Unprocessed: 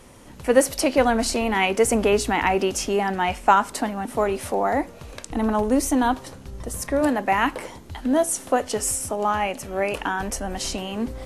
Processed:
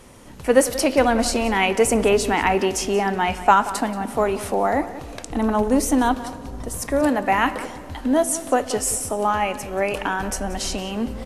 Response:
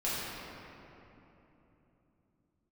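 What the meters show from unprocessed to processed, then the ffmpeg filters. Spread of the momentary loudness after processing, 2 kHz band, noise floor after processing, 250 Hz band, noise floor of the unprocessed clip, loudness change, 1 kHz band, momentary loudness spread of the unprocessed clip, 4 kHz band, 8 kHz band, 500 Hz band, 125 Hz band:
10 LU, +1.5 dB, -38 dBFS, +2.0 dB, -43 dBFS, +1.5 dB, +1.5 dB, 11 LU, +1.5 dB, +1.5 dB, +1.5 dB, +2.0 dB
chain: -filter_complex "[0:a]asplit=2[s0][s1];[s1]adelay=180.8,volume=0.178,highshelf=f=4000:g=-4.07[s2];[s0][s2]amix=inputs=2:normalize=0,asplit=2[s3][s4];[1:a]atrim=start_sample=2205[s5];[s4][s5]afir=irnorm=-1:irlink=0,volume=0.0668[s6];[s3][s6]amix=inputs=2:normalize=0,volume=1.12"

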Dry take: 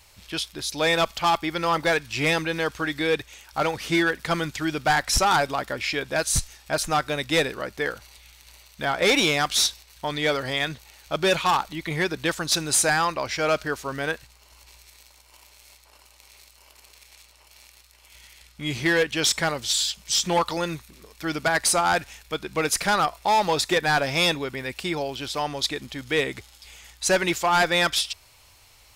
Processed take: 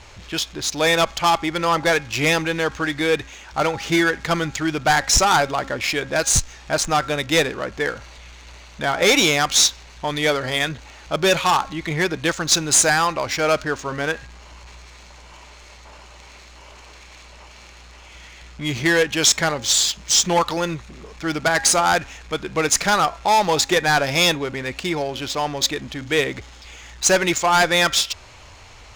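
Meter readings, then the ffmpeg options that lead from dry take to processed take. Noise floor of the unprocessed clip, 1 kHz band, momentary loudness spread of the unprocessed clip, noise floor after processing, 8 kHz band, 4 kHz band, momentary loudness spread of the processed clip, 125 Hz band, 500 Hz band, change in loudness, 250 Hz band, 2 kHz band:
-55 dBFS, +4.0 dB, 10 LU, -44 dBFS, +7.5 dB, +4.5 dB, 11 LU, +4.5 dB, +4.0 dB, +4.5 dB, +4.0 dB, +4.0 dB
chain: -af "aeval=exprs='val(0)+0.5*0.0106*sgn(val(0))':c=same,equalizer=f=6700:w=3.2:g=9.5,bandreject=f=271.7:t=h:w=4,bandreject=f=543.4:t=h:w=4,bandreject=f=815.1:t=h:w=4,bandreject=f=1086.8:t=h:w=4,bandreject=f=1358.5:t=h:w=4,bandreject=f=1630.2:t=h:w=4,bandreject=f=1901.9:t=h:w=4,bandreject=f=2173.6:t=h:w=4,bandreject=f=2445.3:t=h:w=4,adynamicsmooth=sensitivity=4:basefreq=2600,volume=1.5"

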